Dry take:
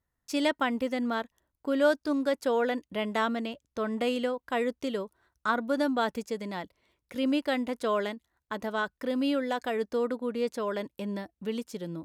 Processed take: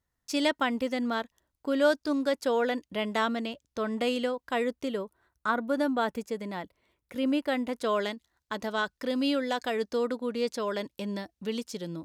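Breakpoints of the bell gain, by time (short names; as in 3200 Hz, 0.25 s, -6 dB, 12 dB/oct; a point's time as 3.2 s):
bell 5000 Hz 1.5 oct
4.53 s +4 dB
4.95 s -3.5 dB
7.49 s -3.5 dB
8.08 s +7.5 dB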